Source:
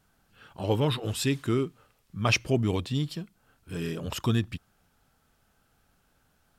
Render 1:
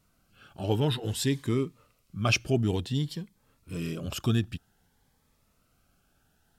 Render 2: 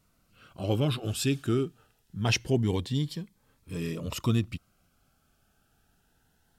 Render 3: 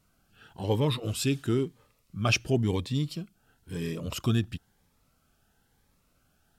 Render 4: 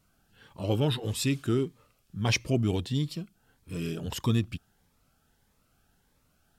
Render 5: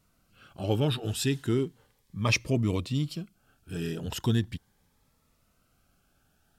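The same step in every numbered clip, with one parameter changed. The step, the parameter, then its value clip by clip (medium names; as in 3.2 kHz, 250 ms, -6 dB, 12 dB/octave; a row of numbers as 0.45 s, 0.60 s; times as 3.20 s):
Shepard-style phaser, rate: 0.54 Hz, 0.24 Hz, 0.99 Hz, 1.6 Hz, 0.37 Hz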